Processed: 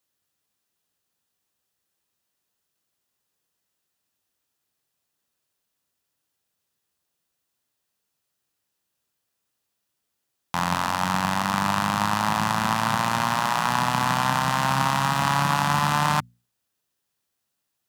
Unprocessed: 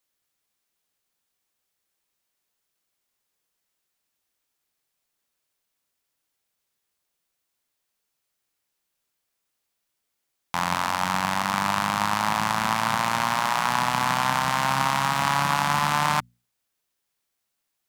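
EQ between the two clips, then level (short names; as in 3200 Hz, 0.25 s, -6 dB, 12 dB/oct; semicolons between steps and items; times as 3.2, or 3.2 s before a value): HPF 73 Hz; low shelf 220 Hz +7.5 dB; notch 2200 Hz, Q 11; 0.0 dB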